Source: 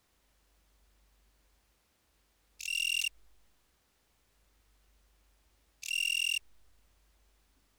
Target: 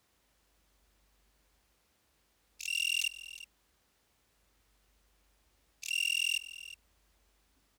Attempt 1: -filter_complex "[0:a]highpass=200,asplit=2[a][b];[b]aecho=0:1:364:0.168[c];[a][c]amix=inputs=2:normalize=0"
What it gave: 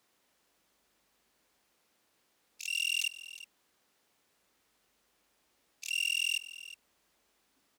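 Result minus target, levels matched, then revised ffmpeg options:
125 Hz band -13.0 dB
-filter_complex "[0:a]highpass=59,asplit=2[a][b];[b]aecho=0:1:364:0.168[c];[a][c]amix=inputs=2:normalize=0"

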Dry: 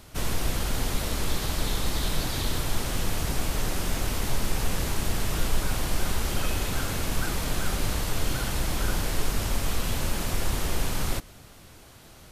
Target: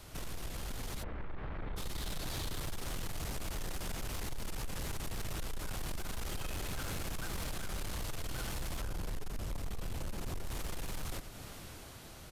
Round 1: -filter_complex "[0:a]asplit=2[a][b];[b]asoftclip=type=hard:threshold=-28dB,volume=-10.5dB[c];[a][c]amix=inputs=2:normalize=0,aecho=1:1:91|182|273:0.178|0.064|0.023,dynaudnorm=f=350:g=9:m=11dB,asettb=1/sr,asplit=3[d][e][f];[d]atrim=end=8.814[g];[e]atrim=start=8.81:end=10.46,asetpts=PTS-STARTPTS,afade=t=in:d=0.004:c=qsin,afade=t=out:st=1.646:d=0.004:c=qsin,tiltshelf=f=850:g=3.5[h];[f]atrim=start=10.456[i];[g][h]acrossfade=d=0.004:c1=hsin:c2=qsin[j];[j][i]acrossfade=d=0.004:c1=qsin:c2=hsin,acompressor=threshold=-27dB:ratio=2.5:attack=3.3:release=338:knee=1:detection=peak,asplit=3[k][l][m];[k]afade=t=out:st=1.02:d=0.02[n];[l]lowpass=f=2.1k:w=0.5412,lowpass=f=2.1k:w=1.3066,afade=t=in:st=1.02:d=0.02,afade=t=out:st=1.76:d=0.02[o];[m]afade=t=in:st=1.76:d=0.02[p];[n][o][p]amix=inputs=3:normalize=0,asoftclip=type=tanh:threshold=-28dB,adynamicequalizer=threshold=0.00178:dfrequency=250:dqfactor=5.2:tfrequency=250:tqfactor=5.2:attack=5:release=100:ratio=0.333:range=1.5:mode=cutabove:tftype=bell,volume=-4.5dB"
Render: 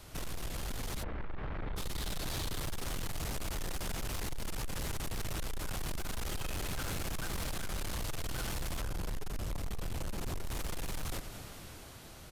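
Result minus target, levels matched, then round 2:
compressor: peak gain reduction -4 dB
-filter_complex "[0:a]asplit=2[a][b];[b]asoftclip=type=hard:threshold=-28dB,volume=-10.5dB[c];[a][c]amix=inputs=2:normalize=0,aecho=1:1:91|182|273:0.178|0.064|0.023,dynaudnorm=f=350:g=9:m=11dB,asettb=1/sr,asplit=3[d][e][f];[d]atrim=end=8.814[g];[e]atrim=start=8.81:end=10.46,asetpts=PTS-STARTPTS,afade=t=in:d=0.004:c=qsin,afade=t=out:st=1.646:d=0.004:c=qsin,tiltshelf=f=850:g=3.5[h];[f]atrim=start=10.456[i];[g][h]acrossfade=d=0.004:c1=hsin:c2=qsin[j];[j][i]acrossfade=d=0.004:c1=qsin:c2=hsin,acompressor=threshold=-33.5dB:ratio=2.5:attack=3.3:release=338:knee=1:detection=peak,asplit=3[k][l][m];[k]afade=t=out:st=1.02:d=0.02[n];[l]lowpass=f=2.1k:w=0.5412,lowpass=f=2.1k:w=1.3066,afade=t=in:st=1.02:d=0.02,afade=t=out:st=1.76:d=0.02[o];[m]afade=t=in:st=1.76:d=0.02[p];[n][o][p]amix=inputs=3:normalize=0,asoftclip=type=tanh:threshold=-28dB,adynamicequalizer=threshold=0.00178:dfrequency=250:dqfactor=5.2:tfrequency=250:tqfactor=5.2:attack=5:release=100:ratio=0.333:range=1.5:mode=cutabove:tftype=bell,volume=-4.5dB"

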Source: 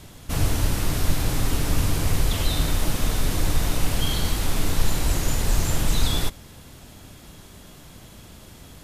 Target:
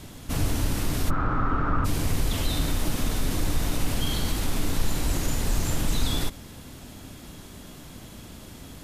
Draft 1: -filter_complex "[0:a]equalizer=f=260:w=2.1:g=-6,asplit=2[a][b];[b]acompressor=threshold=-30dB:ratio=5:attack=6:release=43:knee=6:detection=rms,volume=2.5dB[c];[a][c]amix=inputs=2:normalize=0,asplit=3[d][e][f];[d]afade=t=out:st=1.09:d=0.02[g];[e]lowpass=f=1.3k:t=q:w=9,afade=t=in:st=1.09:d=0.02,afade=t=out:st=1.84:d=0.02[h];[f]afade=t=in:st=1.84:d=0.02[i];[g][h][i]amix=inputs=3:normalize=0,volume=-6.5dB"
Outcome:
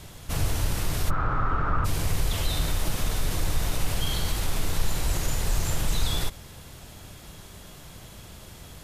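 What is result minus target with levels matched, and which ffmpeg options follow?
250 Hz band -5.5 dB
-filter_complex "[0:a]equalizer=f=260:w=2.1:g=5,asplit=2[a][b];[b]acompressor=threshold=-30dB:ratio=5:attack=6:release=43:knee=6:detection=rms,volume=2.5dB[c];[a][c]amix=inputs=2:normalize=0,asplit=3[d][e][f];[d]afade=t=out:st=1.09:d=0.02[g];[e]lowpass=f=1.3k:t=q:w=9,afade=t=in:st=1.09:d=0.02,afade=t=out:st=1.84:d=0.02[h];[f]afade=t=in:st=1.84:d=0.02[i];[g][h][i]amix=inputs=3:normalize=0,volume=-6.5dB"

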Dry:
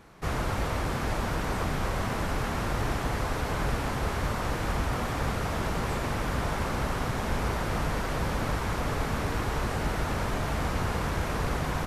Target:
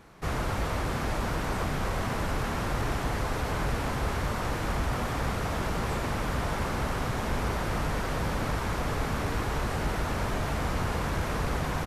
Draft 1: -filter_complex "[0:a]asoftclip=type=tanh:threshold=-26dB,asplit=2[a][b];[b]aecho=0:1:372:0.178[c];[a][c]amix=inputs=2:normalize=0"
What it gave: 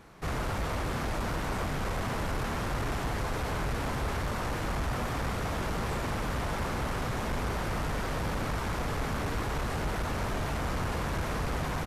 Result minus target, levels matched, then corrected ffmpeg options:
soft clip: distortion +13 dB
-filter_complex "[0:a]asoftclip=type=tanh:threshold=-17dB,asplit=2[a][b];[b]aecho=0:1:372:0.178[c];[a][c]amix=inputs=2:normalize=0"

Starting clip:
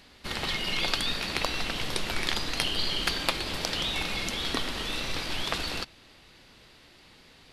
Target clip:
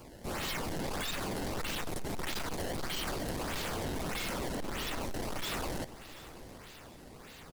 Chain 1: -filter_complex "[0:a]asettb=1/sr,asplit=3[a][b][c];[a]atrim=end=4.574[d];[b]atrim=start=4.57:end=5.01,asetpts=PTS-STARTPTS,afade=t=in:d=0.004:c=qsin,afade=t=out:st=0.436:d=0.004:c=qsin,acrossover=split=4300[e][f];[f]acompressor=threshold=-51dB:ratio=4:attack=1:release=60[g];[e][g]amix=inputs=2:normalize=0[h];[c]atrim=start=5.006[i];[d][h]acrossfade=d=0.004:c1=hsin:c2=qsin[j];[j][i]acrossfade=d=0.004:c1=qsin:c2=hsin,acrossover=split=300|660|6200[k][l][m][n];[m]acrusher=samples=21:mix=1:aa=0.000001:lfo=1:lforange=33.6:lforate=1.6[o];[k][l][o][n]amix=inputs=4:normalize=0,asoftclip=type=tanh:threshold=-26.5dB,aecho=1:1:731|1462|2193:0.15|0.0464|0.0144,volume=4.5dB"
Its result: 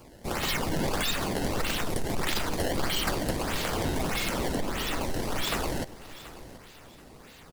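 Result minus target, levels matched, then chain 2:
soft clip: distortion -7 dB
-filter_complex "[0:a]asettb=1/sr,asplit=3[a][b][c];[a]atrim=end=4.574[d];[b]atrim=start=4.57:end=5.01,asetpts=PTS-STARTPTS,afade=t=in:d=0.004:c=qsin,afade=t=out:st=0.436:d=0.004:c=qsin,acrossover=split=4300[e][f];[f]acompressor=threshold=-51dB:ratio=4:attack=1:release=60[g];[e][g]amix=inputs=2:normalize=0[h];[c]atrim=start=5.006[i];[d][h]acrossfade=d=0.004:c1=hsin:c2=qsin[j];[j][i]acrossfade=d=0.004:c1=qsin:c2=hsin,acrossover=split=300|660|6200[k][l][m][n];[m]acrusher=samples=21:mix=1:aa=0.000001:lfo=1:lforange=33.6:lforate=1.6[o];[k][l][o][n]amix=inputs=4:normalize=0,asoftclip=type=tanh:threshold=-38.5dB,aecho=1:1:731|1462|2193:0.15|0.0464|0.0144,volume=4.5dB"

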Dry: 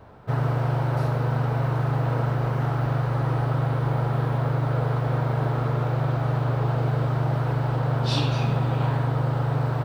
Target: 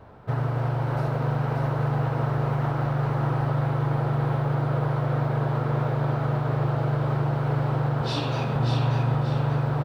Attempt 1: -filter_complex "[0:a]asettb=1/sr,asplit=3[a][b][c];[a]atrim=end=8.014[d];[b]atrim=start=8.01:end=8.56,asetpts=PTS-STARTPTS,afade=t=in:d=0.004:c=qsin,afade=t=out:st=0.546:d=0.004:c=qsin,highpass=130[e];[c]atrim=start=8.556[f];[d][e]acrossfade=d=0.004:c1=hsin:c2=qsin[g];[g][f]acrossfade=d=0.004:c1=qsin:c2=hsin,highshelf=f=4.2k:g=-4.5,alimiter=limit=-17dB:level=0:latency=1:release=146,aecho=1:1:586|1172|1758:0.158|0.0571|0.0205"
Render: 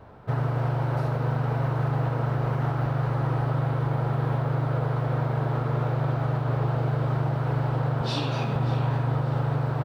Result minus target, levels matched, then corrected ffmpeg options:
echo-to-direct -11.5 dB
-filter_complex "[0:a]asettb=1/sr,asplit=3[a][b][c];[a]atrim=end=8.014[d];[b]atrim=start=8.01:end=8.56,asetpts=PTS-STARTPTS,afade=t=in:d=0.004:c=qsin,afade=t=out:st=0.546:d=0.004:c=qsin,highpass=130[e];[c]atrim=start=8.556[f];[d][e]acrossfade=d=0.004:c1=hsin:c2=qsin[g];[g][f]acrossfade=d=0.004:c1=qsin:c2=hsin,highshelf=f=4.2k:g=-4.5,alimiter=limit=-17dB:level=0:latency=1:release=146,aecho=1:1:586|1172|1758|2344|2930:0.596|0.214|0.0772|0.0278|0.01"

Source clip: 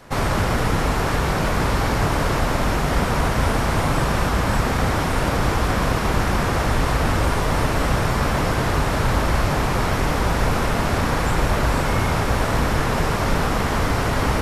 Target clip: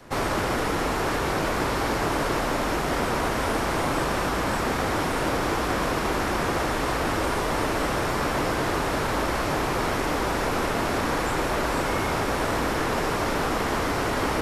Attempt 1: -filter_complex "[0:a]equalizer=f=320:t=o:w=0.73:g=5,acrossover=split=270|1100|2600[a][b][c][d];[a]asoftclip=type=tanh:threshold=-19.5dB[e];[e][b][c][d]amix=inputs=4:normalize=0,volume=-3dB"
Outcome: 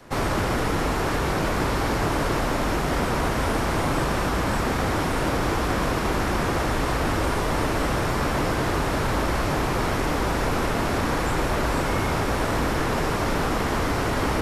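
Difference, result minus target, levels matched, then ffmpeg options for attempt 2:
soft clip: distortion -6 dB
-filter_complex "[0:a]equalizer=f=320:t=o:w=0.73:g=5,acrossover=split=270|1100|2600[a][b][c][d];[a]asoftclip=type=tanh:threshold=-28dB[e];[e][b][c][d]amix=inputs=4:normalize=0,volume=-3dB"

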